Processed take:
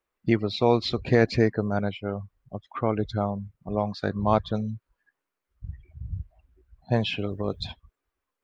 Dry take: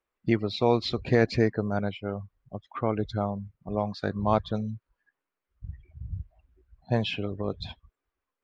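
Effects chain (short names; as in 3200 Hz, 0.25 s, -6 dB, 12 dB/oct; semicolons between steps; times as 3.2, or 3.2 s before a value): 7.19–7.67 high shelf 6300 Hz +12 dB; gain +2 dB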